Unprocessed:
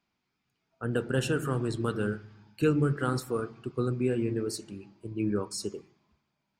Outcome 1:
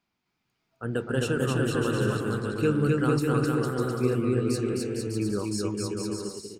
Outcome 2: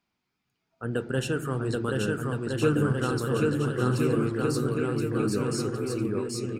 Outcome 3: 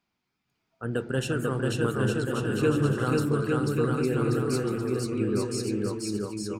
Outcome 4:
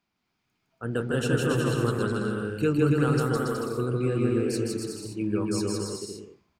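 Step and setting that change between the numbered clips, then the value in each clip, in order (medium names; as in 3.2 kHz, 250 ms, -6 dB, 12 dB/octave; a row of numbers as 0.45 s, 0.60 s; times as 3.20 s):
bouncing-ball echo, first gap: 260 ms, 780 ms, 490 ms, 160 ms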